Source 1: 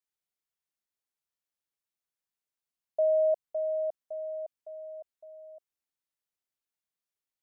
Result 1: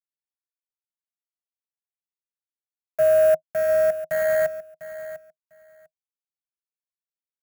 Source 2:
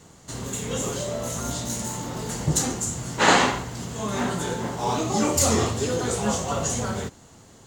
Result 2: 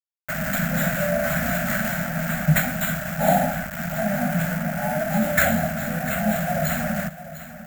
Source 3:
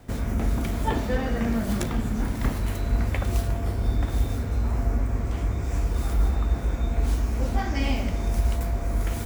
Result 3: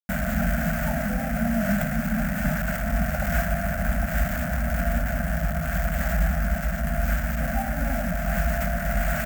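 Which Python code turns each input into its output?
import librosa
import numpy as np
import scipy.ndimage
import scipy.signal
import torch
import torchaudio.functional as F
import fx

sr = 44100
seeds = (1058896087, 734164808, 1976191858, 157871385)

y = fx.brickwall_bandstop(x, sr, low_hz=890.0, high_hz=6700.0)
y = y + 10.0 ** (-51.0 / 20.0) * np.sin(2.0 * np.pi * 1400.0 * np.arange(len(y)) / sr)
y = scipy.signal.sosfilt(scipy.signal.butter(2, 47.0, 'highpass', fs=sr, output='sos'), y)
y = fx.fixed_phaser(y, sr, hz=430.0, stages=6)
y = fx.quant_dither(y, sr, seeds[0], bits=6, dither='none')
y = fx.rider(y, sr, range_db=4, speed_s=2.0)
y = fx.high_shelf(y, sr, hz=7800.0, db=11.0)
y = np.repeat(y[::4], 4)[:len(y)]
y = fx.curve_eq(y, sr, hz=(100.0, 160.0, 240.0, 380.0, 630.0, 1000.0, 1500.0, 3800.0, 11000.0, 16000.0), db=(0, 12, -2, -29, 8, -13, 8, -21, -1, 3))
y = fx.echo_feedback(y, sr, ms=699, feedback_pct=15, wet_db=-14)
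y = F.gain(torch.from_numpy(y), 2.5).numpy()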